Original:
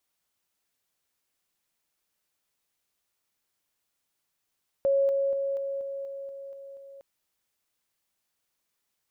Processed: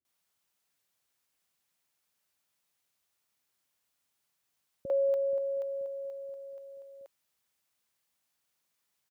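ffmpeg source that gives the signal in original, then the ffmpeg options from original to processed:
-f lavfi -i "aevalsrc='pow(10,(-20-3*floor(t/0.24))/20)*sin(2*PI*551*t)':d=2.16:s=44100"
-filter_complex "[0:a]highpass=67,acrossover=split=370[a][b];[b]adelay=50[c];[a][c]amix=inputs=2:normalize=0"

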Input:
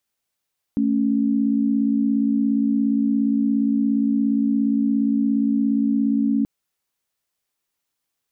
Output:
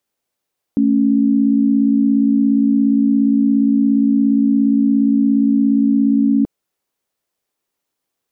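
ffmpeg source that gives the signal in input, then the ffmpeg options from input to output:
-f lavfi -i "aevalsrc='0.106*(sin(2*PI*220*t)+sin(2*PI*277.18*t))':d=5.68:s=44100"
-af "equalizer=f=420:t=o:w=2.4:g=8"

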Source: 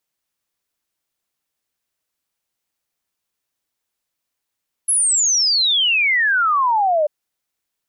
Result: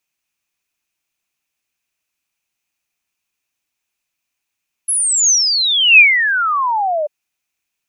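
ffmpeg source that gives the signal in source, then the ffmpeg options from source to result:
-f lavfi -i "aevalsrc='0.211*clip(min(t,2.19-t)/0.01,0,1)*sin(2*PI*11000*2.19/log(580/11000)*(exp(log(580/11000)*t/2.19)-1))':d=2.19:s=44100"
-af "equalizer=f=500:t=o:w=0.33:g=-7,equalizer=f=2.5k:t=o:w=0.33:g=12,equalizer=f=6.3k:t=o:w=0.33:g=5"

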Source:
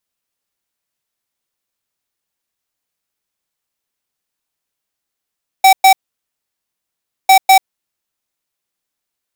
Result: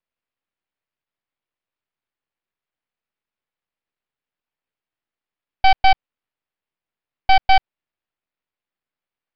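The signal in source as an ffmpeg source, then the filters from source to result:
-f lavfi -i "aevalsrc='0.501*(2*lt(mod(767*t,1),0.5)-1)*clip(min(mod(mod(t,1.65),0.2),0.09-mod(mod(t,1.65),0.2))/0.005,0,1)*lt(mod(t,1.65),0.4)':d=3.3:s=44100"
-af "lowpass=f=3k:w=0.5412,lowpass=f=3k:w=1.3066,aresample=11025,aeval=exprs='max(val(0),0)':c=same,aresample=44100"

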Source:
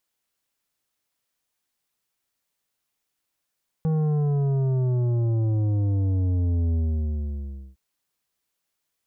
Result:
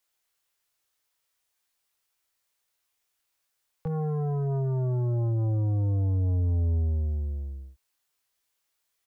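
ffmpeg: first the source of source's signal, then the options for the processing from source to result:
-f lavfi -i "aevalsrc='0.0891*clip((3.91-t)/1.02,0,1)*tanh(2.99*sin(2*PI*160*3.91/log(65/160)*(exp(log(65/160)*t/3.91)-1)))/tanh(2.99)':d=3.91:s=44100"
-filter_complex "[0:a]equalizer=f=200:t=o:w=1.1:g=-10,acrossover=split=140|310|680[a][b][c][d];[d]asplit=2[e][f];[f]adelay=22,volume=-2.5dB[g];[e][g]amix=inputs=2:normalize=0[h];[a][b][c][h]amix=inputs=4:normalize=0"

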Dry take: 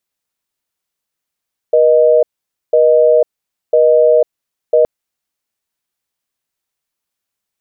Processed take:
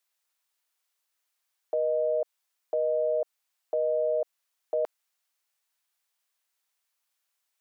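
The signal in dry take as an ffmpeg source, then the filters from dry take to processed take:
-f lavfi -i "aevalsrc='0.355*(sin(2*PI*480*t)+sin(2*PI*620*t))*clip(min(mod(t,1),0.5-mod(t,1))/0.005,0,1)':d=3.12:s=44100"
-af "highpass=710,alimiter=limit=-20.5dB:level=0:latency=1:release=43"

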